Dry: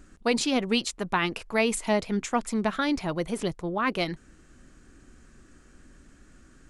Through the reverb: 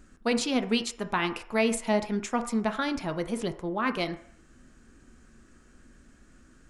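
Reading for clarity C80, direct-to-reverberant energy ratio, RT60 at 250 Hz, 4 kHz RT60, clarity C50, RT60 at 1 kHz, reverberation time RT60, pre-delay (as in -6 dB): 15.5 dB, 8.0 dB, 0.40 s, 0.60 s, 12.5 dB, 0.60 s, 0.60 s, 3 ms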